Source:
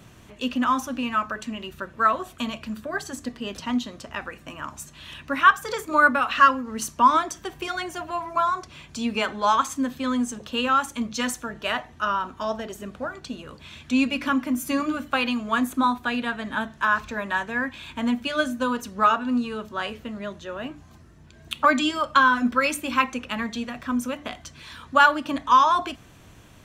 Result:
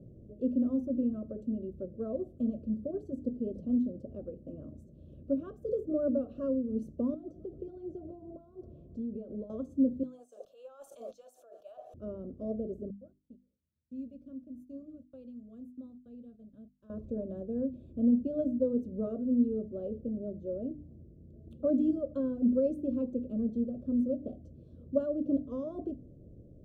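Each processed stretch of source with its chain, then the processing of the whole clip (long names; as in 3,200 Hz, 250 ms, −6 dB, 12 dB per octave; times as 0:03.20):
0:07.14–0:09.50: feedback echo with a low-pass in the loop 130 ms, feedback 78%, low-pass 1,500 Hz, level −22 dB + downward compressor 10 to 1, threshold −32 dBFS + low-pass filter 5,300 Hz
0:10.03–0:11.94: Chebyshev high-pass filter 750 Hz, order 4 + high-shelf EQ 9,900 Hz +11 dB + level that may fall only so fast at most 24 dB per second
0:12.90–0:16.90: noise gate −35 dBFS, range −22 dB + guitar amp tone stack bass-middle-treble 5-5-5
whole clip: elliptic low-pass filter 560 Hz, stop band 40 dB; mains-hum notches 50/100/150/200/250/300 Hz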